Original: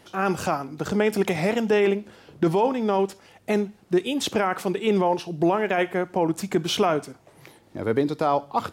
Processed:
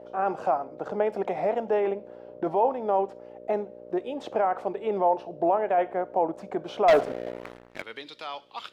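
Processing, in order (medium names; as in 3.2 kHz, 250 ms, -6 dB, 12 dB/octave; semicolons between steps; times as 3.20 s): mains buzz 60 Hz, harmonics 10, -40 dBFS -1 dB/octave; band-pass sweep 690 Hz -> 3.1 kHz, 7.29–7.88 s; 6.88–7.82 s: waveshaping leveller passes 3; trim +3.5 dB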